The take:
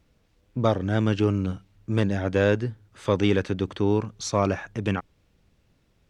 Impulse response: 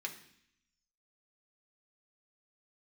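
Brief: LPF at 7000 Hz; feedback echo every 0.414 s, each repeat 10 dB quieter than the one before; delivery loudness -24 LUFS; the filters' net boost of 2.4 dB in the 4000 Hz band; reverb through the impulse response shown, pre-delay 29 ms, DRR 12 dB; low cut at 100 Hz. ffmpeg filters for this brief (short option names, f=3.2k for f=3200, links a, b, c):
-filter_complex "[0:a]highpass=100,lowpass=7k,equalizer=f=4k:t=o:g=3.5,aecho=1:1:414|828|1242|1656:0.316|0.101|0.0324|0.0104,asplit=2[a][b];[1:a]atrim=start_sample=2205,adelay=29[c];[b][c]afir=irnorm=-1:irlink=0,volume=-12.5dB[d];[a][d]amix=inputs=2:normalize=0,volume=1.5dB"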